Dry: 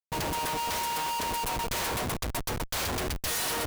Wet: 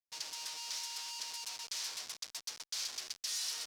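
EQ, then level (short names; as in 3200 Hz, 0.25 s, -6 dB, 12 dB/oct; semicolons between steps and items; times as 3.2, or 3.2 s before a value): band-pass 5300 Hz, Q 2.3; 0.0 dB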